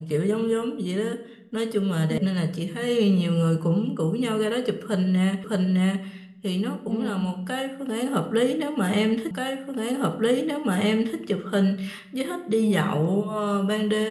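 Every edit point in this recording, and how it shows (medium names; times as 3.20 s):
2.18 s: sound stops dead
5.44 s: repeat of the last 0.61 s
9.31 s: repeat of the last 1.88 s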